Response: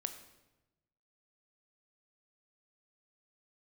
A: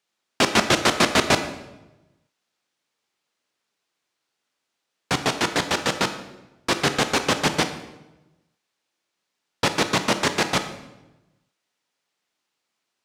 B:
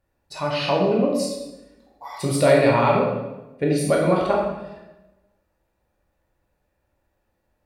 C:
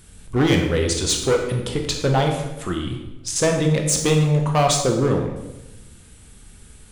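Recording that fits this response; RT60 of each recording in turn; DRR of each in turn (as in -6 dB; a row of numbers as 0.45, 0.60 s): A; 1.0, 1.0, 1.0 s; 8.0, -2.5, 2.0 dB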